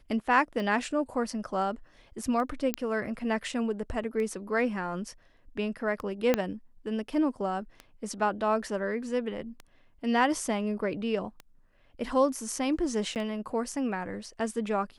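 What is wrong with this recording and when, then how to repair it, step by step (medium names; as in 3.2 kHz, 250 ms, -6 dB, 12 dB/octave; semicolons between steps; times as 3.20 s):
tick 33 1/3 rpm
2.74 s: pop -11 dBFS
6.34 s: pop -10 dBFS
13.15–13.16 s: dropout 8.8 ms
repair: de-click; interpolate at 13.15 s, 8.8 ms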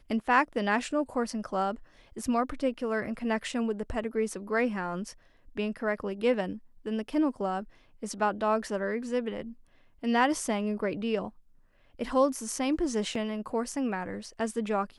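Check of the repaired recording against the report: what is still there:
6.34 s: pop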